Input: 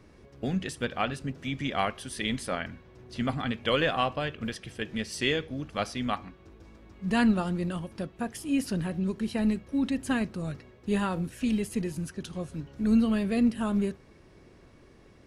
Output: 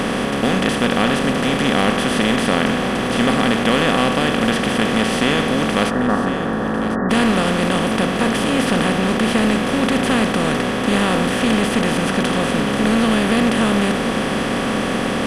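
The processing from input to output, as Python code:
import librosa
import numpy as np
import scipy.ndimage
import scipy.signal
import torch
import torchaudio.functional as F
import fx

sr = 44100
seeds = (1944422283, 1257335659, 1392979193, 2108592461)

p1 = fx.bin_compress(x, sr, power=0.2)
p2 = fx.cheby1_lowpass(p1, sr, hz=1900.0, order=10, at=(5.89, 7.09), fade=0.02)
p3 = 10.0 ** (-13.0 / 20.0) * np.tanh(p2 / 10.0 ** (-13.0 / 20.0))
p4 = p2 + F.gain(torch.from_numpy(p3), -10.0).numpy()
y = p4 + 10.0 ** (-12.0 / 20.0) * np.pad(p4, (int(1049 * sr / 1000.0), 0))[:len(p4)]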